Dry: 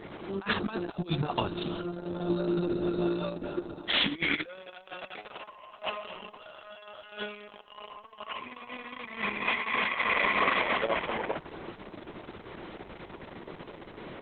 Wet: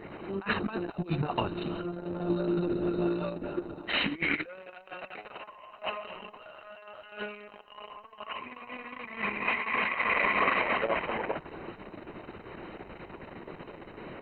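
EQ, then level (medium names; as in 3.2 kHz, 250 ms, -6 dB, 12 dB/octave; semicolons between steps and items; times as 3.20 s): Butterworth band-stop 3.4 kHz, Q 4.8; 0.0 dB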